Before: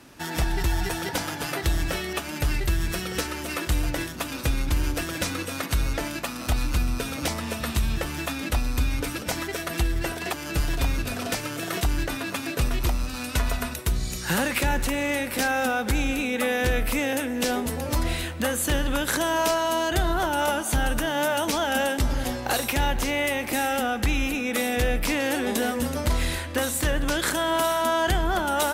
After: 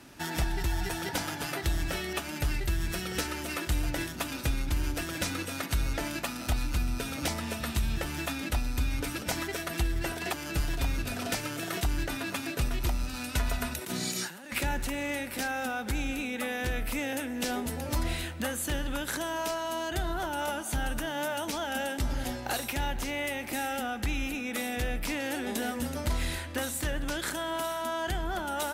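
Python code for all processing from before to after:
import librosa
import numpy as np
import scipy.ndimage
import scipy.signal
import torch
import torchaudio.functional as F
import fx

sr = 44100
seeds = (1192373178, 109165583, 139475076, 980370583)

y = fx.chain(x, sr, fx.highpass(hz=170.0, slope=24),
    fx.over_compress(threshold_db=-36.0, ratio=-1.0), at=(13.81, 14.52))
y = fx.peak_eq(y, sr, hz=490.0, db=-4.0, octaves=0.27)
y = fx.notch(y, sr, hz=1100.0, q=14.0)
y = fx.rider(y, sr, range_db=10, speed_s=0.5)
y = F.gain(torch.from_numpy(y), -6.0).numpy()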